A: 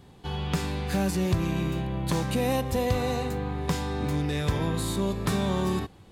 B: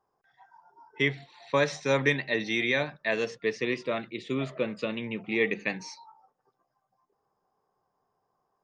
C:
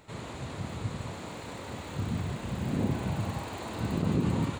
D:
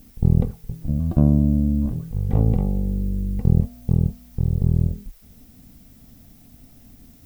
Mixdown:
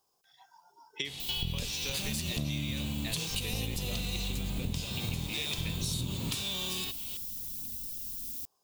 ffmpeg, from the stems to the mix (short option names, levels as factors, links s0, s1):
-filter_complex "[0:a]equalizer=f=2700:t=o:w=1.4:g=11,acompressor=threshold=0.00631:ratio=2,adelay=1050,volume=0.891[s0];[1:a]acompressor=threshold=0.0251:ratio=6,volume=0.668[s1];[2:a]bass=f=250:g=6,treble=f=4000:g=-7,adelay=1850,volume=0.596[s2];[3:a]flanger=delay=0:depth=8:regen=62:speed=0.31:shape=triangular,adelay=1200,volume=0.794[s3];[s0][s1][s2][s3]amix=inputs=4:normalize=0,aexciter=amount=9:drive=3.2:freq=2700,acompressor=threshold=0.0282:ratio=6"